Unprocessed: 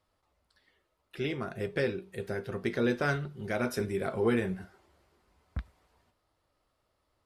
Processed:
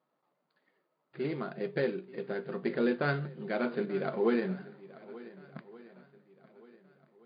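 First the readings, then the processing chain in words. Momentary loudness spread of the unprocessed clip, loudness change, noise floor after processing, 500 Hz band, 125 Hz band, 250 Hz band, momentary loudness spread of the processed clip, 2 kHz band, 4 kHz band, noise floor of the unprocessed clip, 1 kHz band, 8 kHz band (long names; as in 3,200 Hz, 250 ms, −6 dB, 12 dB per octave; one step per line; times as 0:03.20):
14 LU, −0.5 dB, −81 dBFS, 0.0 dB, −3.5 dB, 0.0 dB, 20 LU, −2.5 dB, −4.5 dB, −78 dBFS, −0.5 dB, below −25 dB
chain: running median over 15 samples
feedback echo with a long and a short gap by turns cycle 1,474 ms, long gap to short 1.5 to 1, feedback 31%, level −18.5 dB
brick-wall band-pass 130–4,900 Hz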